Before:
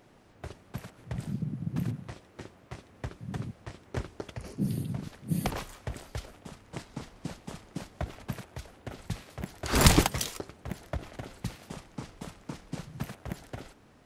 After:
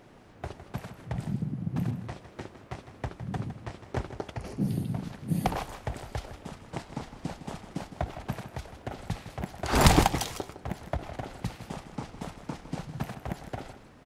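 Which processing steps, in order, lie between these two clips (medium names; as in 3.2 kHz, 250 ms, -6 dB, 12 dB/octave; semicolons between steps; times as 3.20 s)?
dynamic bell 790 Hz, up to +7 dB, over -55 dBFS, Q 2.6; in parallel at -2 dB: compression, threshold -42 dBFS, peak gain reduction 26.5 dB; on the sum: treble shelf 4.6 kHz -5 dB; delay 159 ms -12 dB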